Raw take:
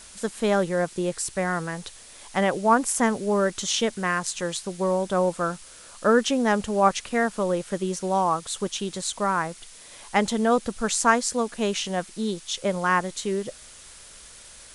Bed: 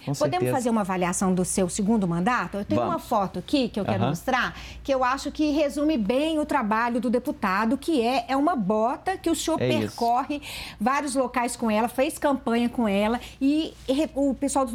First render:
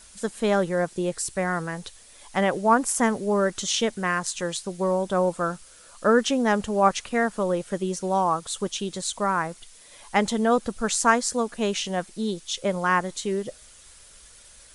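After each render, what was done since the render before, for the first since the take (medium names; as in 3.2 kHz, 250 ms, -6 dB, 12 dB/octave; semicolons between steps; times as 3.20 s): noise reduction 6 dB, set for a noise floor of -47 dBFS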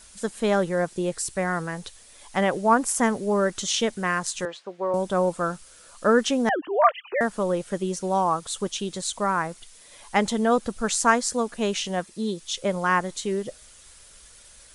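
4.45–4.94 s: band-pass 410–2300 Hz; 6.49–7.21 s: formants replaced by sine waves; 12.01–12.41 s: comb of notches 750 Hz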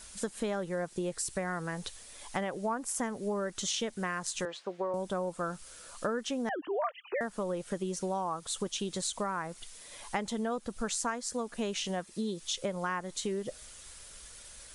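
compression 6:1, threshold -31 dBFS, peak gain reduction 17.5 dB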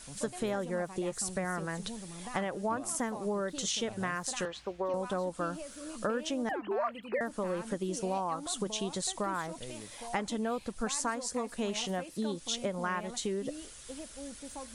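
add bed -21.5 dB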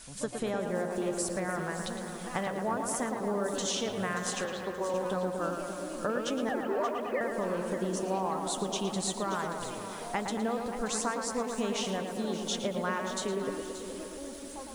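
on a send: tape echo 112 ms, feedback 83%, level -4.5 dB, low-pass 2.3 kHz; on the sum: bit-crushed delay 579 ms, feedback 35%, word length 8-bit, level -11.5 dB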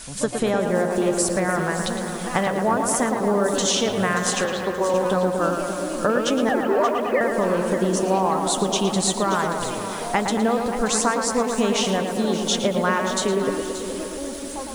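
trim +11 dB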